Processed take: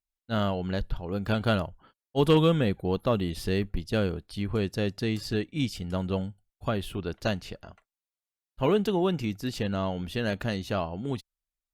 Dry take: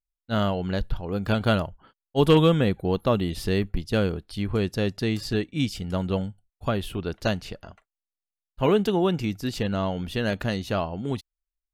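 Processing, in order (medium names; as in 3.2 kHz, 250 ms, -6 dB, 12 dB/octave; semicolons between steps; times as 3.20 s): Chebyshev shaper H 5 -36 dB, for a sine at -8 dBFS; trim -3.5 dB; Opus 64 kbps 48 kHz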